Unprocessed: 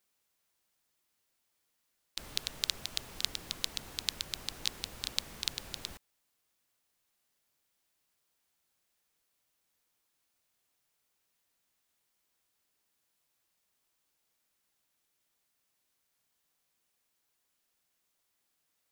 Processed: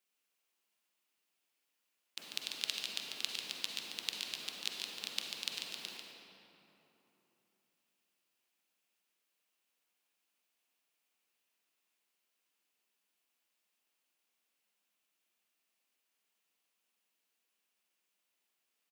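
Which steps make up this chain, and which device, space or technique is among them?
PA in a hall (high-pass filter 190 Hz 24 dB per octave; parametric band 2,700 Hz +7 dB 0.54 octaves; single-tap delay 143 ms −6.5 dB; convolution reverb RT60 3.3 s, pre-delay 41 ms, DRR 2 dB)
level −7 dB

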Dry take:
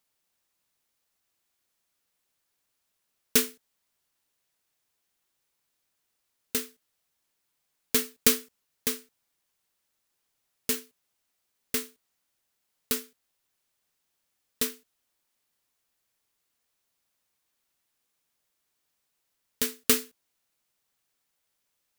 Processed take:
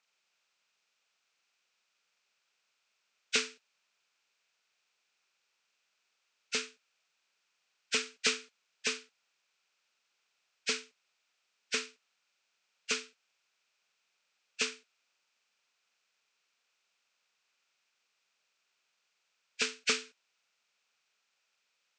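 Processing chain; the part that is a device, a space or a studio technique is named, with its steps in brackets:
hearing aid with frequency lowering (hearing-aid frequency compression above 1,400 Hz 1.5 to 1; downward compressor 2.5 to 1, threshold −28 dBFS, peak gain reduction 8.5 dB; loudspeaker in its box 270–6,100 Hz, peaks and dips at 300 Hz −10 dB, 1,400 Hz +7 dB, 2,500 Hz +9 dB)

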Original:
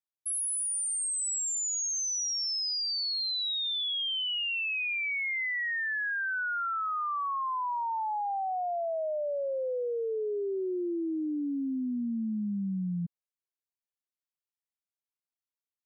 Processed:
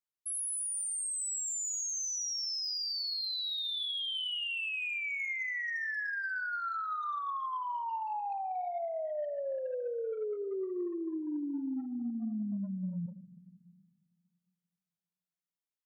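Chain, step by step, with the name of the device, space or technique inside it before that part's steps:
saturated reverb return (on a send at −8.5 dB: convolution reverb RT60 1.6 s, pre-delay 11 ms + soft clipping −26.5 dBFS, distortion −16 dB)
0:07.23–0:07.83: on the sum: Bessel low-pass filter 5,100 Hz
level −4.5 dB

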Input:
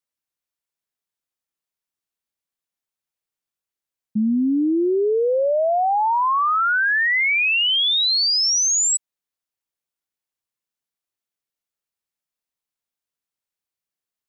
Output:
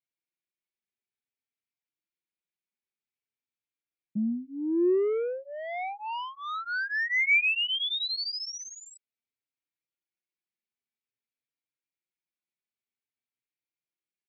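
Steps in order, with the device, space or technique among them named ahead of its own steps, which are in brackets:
0:08.15–0:08.65: high-shelf EQ 6,300 Hz +3 dB
barber-pole flanger into a guitar amplifier (barber-pole flanger 3.8 ms +0.51 Hz; soft clipping −20.5 dBFS, distortion −15 dB; loudspeaker in its box 100–4,600 Hz, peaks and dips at 120 Hz +8 dB, 230 Hz +6 dB, 360 Hz +7 dB, 650 Hz −8 dB, 1,100 Hz −10 dB, 2,300 Hz +9 dB)
level −5.5 dB

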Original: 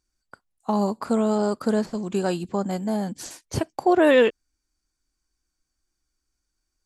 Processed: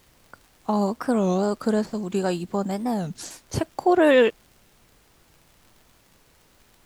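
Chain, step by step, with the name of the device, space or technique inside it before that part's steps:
warped LP (wow of a warped record 33 1/3 rpm, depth 250 cents; surface crackle; pink noise bed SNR 33 dB)

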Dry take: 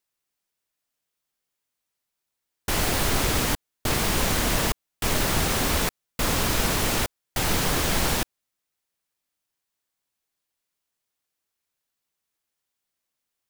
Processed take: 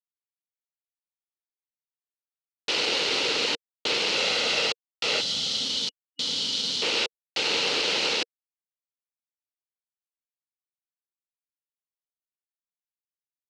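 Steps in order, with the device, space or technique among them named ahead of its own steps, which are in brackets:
0:04.15–0:05.65: comb filter 1.5 ms, depth 42%
hand-held game console (bit reduction 4 bits; loudspeaker in its box 440–5,400 Hz, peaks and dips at 470 Hz +7 dB, 690 Hz −9 dB, 1,100 Hz −8 dB, 1,700 Hz −7 dB, 2,800 Hz +7 dB, 4,200 Hz +6 dB)
0:05.21–0:06.82: gain on a spectral selection 300–2,900 Hz −14 dB

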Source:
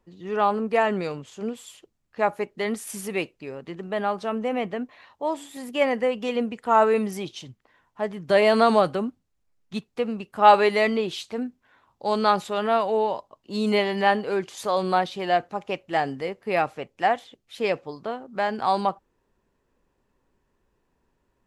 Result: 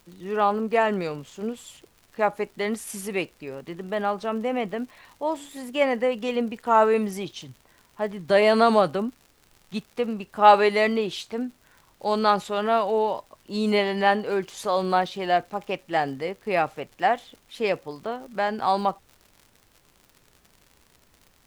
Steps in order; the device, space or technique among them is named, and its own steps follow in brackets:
vinyl LP (surface crackle 90 per second −39 dBFS; pink noise bed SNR 37 dB)

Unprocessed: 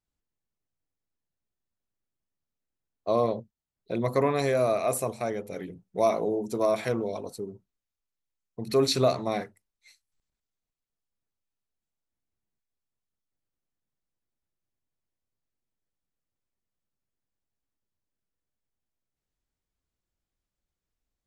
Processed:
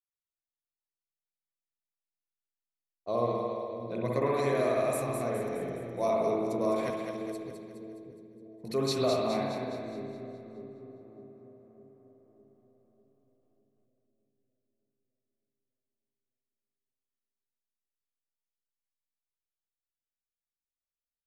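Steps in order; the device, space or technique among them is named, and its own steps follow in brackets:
dub delay into a spring reverb (feedback echo with a low-pass in the loop 293 ms, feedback 77%, low-pass 3,200 Hz, level −20.5 dB; spring reverb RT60 1.3 s, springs 58 ms, chirp 75 ms, DRR −1.5 dB)
0:06.90–0:08.64: Bessel high-pass filter 3,000 Hz, order 2
noise gate with hold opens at −60 dBFS
echo with a time of its own for lows and highs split 420 Hz, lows 606 ms, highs 208 ms, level −6 dB
level −7.5 dB

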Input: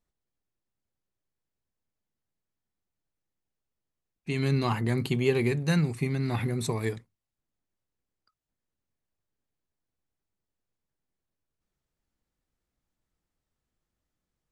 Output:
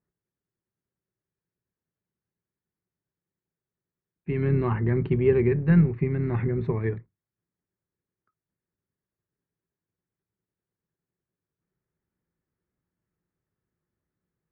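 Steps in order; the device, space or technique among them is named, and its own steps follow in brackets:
sub-octave bass pedal (sub-octave generator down 2 octaves, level −5 dB; loudspeaker in its box 63–2,100 Hz, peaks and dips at 110 Hz +6 dB, 170 Hz +9 dB, 380 Hz +8 dB, 730 Hz −4 dB, 1,700 Hz +3 dB)
level −1.5 dB

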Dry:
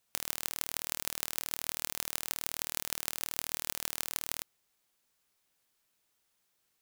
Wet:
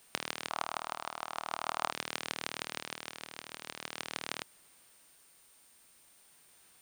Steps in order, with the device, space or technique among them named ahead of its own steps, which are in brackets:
medium wave at night (band-pass filter 130–3,700 Hz; downward compressor, threshold −44 dBFS, peak gain reduction 9.5 dB; amplitude tremolo 0.44 Hz, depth 63%; steady tone 9,000 Hz −77 dBFS; white noise bed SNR 20 dB)
0:00.50–0:01.92: flat-topped bell 940 Hz +13 dB 1.3 octaves
level +13 dB

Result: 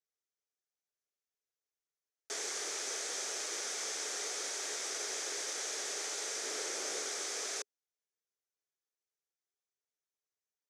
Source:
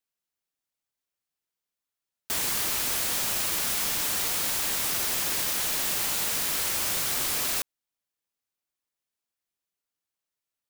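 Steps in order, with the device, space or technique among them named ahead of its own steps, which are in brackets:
0:06.43–0:07.09: low-shelf EQ 430 Hz +8.5 dB
phone speaker on a table (loudspeaker in its box 360–7,700 Hz, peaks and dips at 420 Hz +9 dB, 1,000 Hz −8 dB, 2,800 Hz −8 dB, 4,100 Hz −4 dB, 6,100 Hz +6 dB)
level −7 dB

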